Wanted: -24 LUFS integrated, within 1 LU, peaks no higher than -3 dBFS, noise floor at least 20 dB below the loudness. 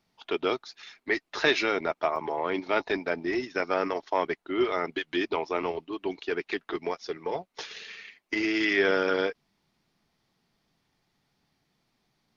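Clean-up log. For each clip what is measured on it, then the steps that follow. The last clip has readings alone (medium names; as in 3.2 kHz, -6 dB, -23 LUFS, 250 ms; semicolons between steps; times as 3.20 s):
dropouts 1; longest dropout 2.1 ms; loudness -29.0 LUFS; peak level -8.5 dBFS; loudness target -24.0 LUFS
-> interpolate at 2.16 s, 2.1 ms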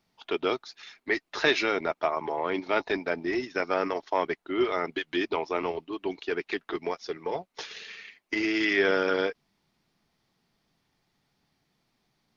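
dropouts 0; loudness -29.0 LUFS; peak level -8.5 dBFS; loudness target -24.0 LUFS
-> trim +5 dB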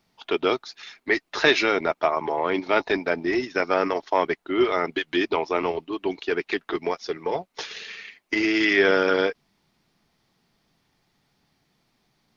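loudness -24.0 LUFS; peak level -3.5 dBFS; noise floor -72 dBFS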